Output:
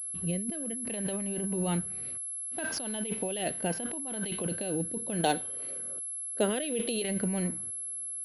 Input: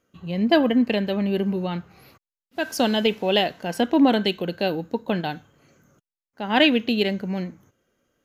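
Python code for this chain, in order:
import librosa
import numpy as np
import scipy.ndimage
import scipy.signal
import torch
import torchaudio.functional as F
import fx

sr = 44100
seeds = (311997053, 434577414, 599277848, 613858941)

y = fx.rotary(x, sr, hz=0.65)
y = fx.over_compress(y, sr, threshold_db=-31.0, ratio=-1.0)
y = fx.graphic_eq_10(y, sr, hz=(125, 500, 4000), db=(-8, 12, 9), at=(5.24, 7.02))
y = fx.pwm(y, sr, carrier_hz=11000.0)
y = y * 10.0 ** (-3.5 / 20.0)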